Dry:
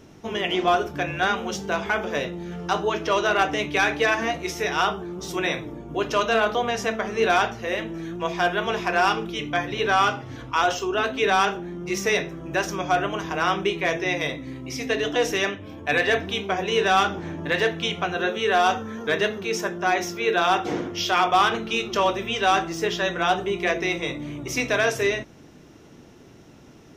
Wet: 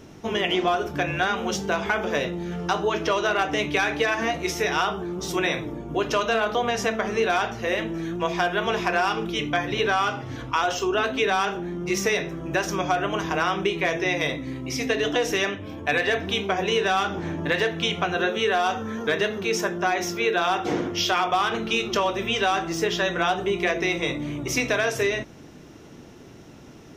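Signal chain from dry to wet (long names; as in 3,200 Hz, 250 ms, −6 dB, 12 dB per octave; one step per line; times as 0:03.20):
downward compressor, threshold −22 dBFS, peak gain reduction 8 dB
level +3 dB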